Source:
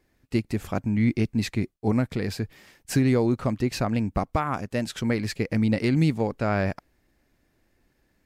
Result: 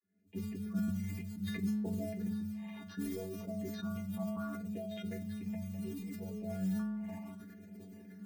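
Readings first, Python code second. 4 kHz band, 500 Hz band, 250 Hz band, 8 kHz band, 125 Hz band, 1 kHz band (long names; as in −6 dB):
−16.0 dB, −16.5 dB, −11.5 dB, −14.5 dB, −15.5 dB, −20.5 dB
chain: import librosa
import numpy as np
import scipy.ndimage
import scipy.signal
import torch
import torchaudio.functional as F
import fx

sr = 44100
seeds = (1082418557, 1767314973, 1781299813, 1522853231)

y = fx.recorder_agc(x, sr, target_db=-18.0, rise_db_per_s=54.0, max_gain_db=30)
y = scipy.signal.sosfilt(scipy.signal.butter(2, 3300.0, 'lowpass', fs=sr, output='sos'), y)
y = fx.phaser_stages(y, sr, stages=6, low_hz=390.0, high_hz=1400.0, hz=0.67, feedback_pct=20)
y = fx.spec_gate(y, sr, threshold_db=-30, keep='strong')
y = fx.vocoder(y, sr, bands=32, carrier='saw', carrier_hz=94.7)
y = fx.mod_noise(y, sr, seeds[0], snr_db=24)
y = fx.low_shelf(y, sr, hz=210.0, db=11.0)
y = fx.stiff_resonator(y, sr, f0_hz=210.0, decay_s=0.68, stiffness=0.008)
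y = fx.sustainer(y, sr, db_per_s=23.0)
y = y * 10.0 ** (3.5 / 20.0)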